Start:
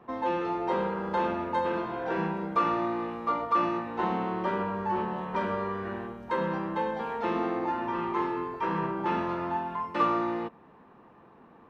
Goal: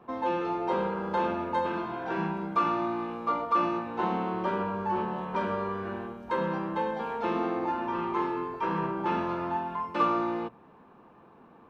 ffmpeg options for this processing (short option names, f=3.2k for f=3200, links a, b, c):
-filter_complex "[0:a]bandreject=f=60:t=h:w=6,bandreject=f=120:t=h:w=6,asettb=1/sr,asplit=3[a][b][c];[a]atrim=end=1.664[d];[b]atrim=start=1.66:end=3.1,asetpts=PTS-STARTPTS,afade=t=in:d=0.004:c=qsin,afade=t=out:st=1.436:d=0.004:c=qsin,equalizer=f=500:w=5.9:g=-10[e];[c]atrim=start=3.096[f];[d][e]acrossfade=d=0.004:c1=hsin:c2=qsin[g];[g][f]acrossfade=d=0.004:c1=qsin:c2=hsin,bandreject=f=1.9k:w=10"